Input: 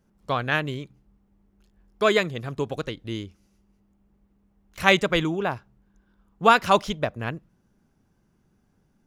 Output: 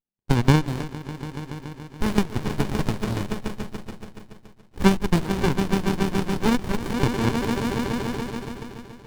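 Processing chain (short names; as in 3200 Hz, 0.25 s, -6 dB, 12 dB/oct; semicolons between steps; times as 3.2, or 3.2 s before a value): HPF 140 Hz; on a send: swelling echo 0.142 s, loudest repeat 5, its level -17 dB; on the sum: expander -30 dBFS; tilt +4 dB/oct; formant shift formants +5 st; in parallel at -10.5 dB: decimation with a swept rate 11×, swing 100% 1.1 Hz; on the sum: compressor 8:1, threshold -25 dBFS, peak gain reduction 17 dB; running maximum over 65 samples; gain +7.5 dB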